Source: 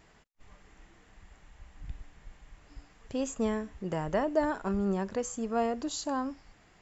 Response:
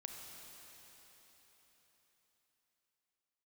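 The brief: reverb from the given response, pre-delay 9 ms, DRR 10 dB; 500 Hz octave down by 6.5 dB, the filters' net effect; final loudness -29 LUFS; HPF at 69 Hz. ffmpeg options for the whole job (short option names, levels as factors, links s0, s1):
-filter_complex "[0:a]highpass=69,equalizer=f=500:t=o:g=-8.5,asplit=2[s0][s1];[1:a]atrim=start_sample=2205,adelay=9[s2];[s1][s2]afir=irnorm=-1:irlink=0,volume=0.447[s3];[s0][s3]amix=inputs=2:normalize=0,volume=1.88"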